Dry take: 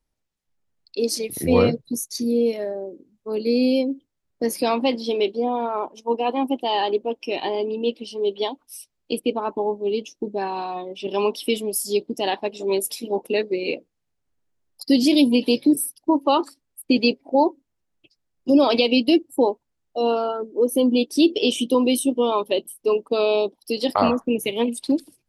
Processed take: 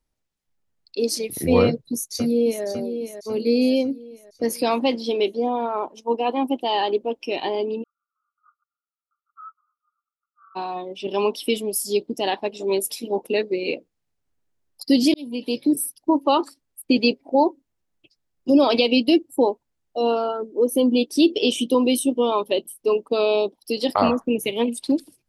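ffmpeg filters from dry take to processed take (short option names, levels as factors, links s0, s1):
-filter_complex "[0:a]asplit=2[s0][s1];[s1]afade=t=in:st=1.64:d=0.01,afade=t=out:st=2.65:d=0.01,aecho=0:1:550|1100|1650|2200|2750|3300:0.354813|0.177407|0.0887033|0.0443517|0.0221758|0.0110879[s2];[s0][s2]amix=inputs=2:normalize=0,asplit=3[s3][s4][s5];[s3]afade=t=out:st=7.82:d=0.02[s6];[s4]asuperpass=centerf=1300:order=12:qfactor=5,afade=t=in:st=7.82:d=0.02,afade=t=out:st=10.55:d=0.02[s7];[s5]afade=t=in:st=10.55:d=0.02[s8];[s6][s7][s8]amix=inputs=3:normalize=0,asplit=2[s9][s10];[s9]atrim=end=15.14,asetpts=PTS-STARTPTS,afade=t=out:st=15.136:d=0.004:c=hsin[s11];[s10]atrim=start=15.14,asetpts=PTS-STARTPTS,afade=t=in:d=0.73[s12];[s11][s12]concat=n=2:v=0:a=1"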